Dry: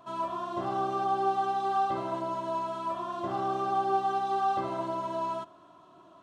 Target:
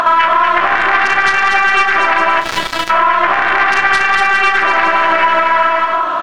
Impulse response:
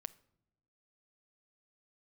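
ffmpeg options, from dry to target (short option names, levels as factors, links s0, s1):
-filter_complex "[0:a]aeval=exprs='0.141*(cos(1*acos(clip(val(0)/0.141,-1,1)))-cos(1*PI/2))+0.01*(cos(2*acos(clip(val(0)/0.141,-1,1)))-cos(2*PI/2))+0.0631*(cos(3*acos(clip(val(0)/0.141,-1,1)))-cos(3*PI/2))':c=same,asplit=2[s0][s1];[s1]asoftclip=type=tanh:threshold=0.0501,volume=0.355[s2];[s0][s2]amix=inputs=2:normalize=0,bandpass=f=1600:t=q:w=2.4:csg=0,aeval=exprs='0.0668*(cos(1*acos(clip(val(0)/0.0668,-1,1)))-cos(1*PI/2))+0.0188*(cos(2*acos(clip(val(0)/0.0668,-1,1)))-cos(2*PI/2))+0.0133*(cos(5*acos(clip(val(0)/0.0668,-1,1)))-cos(5*PI/2))+0.00668*(cos(8*acos(clip(val(0)/0.0668,-1,1)))-cos(8*PI/2))':c=same,acompressor=threshold=0.00562:ratio=6,aecho=1:1:240|408|525.6|607.9|665.5:0.631|0.398|0.251|0.158|0.1,asplit=3[s3][s4][s5];[s3]afade=t=out:st=2.4:d=0.02[s6];[s4]aeval=exprs='sgn(val(0))*max(abs(val(0))-0.00562,0)':c=same,afade=t=in:st=2.4:d=0.02,afade=t=out:st=2.89:d=0.02[s7];[s5]afade=t=in:st=2.89:d=0.02[s8];[s6][s7][s8]amix=inputs=3:normalize=0,asplit=2[s9][s10];[s10]adelay=34,volume=0.282[s11];[s9][s11]amix=inputs=2:normalize=0,acompressor=mode=upward:threshold=0.0224:ratio=2.5,alimiter=level_in=42.2:limit=0.891:release=50:level=0:latency=1,volume=0.891"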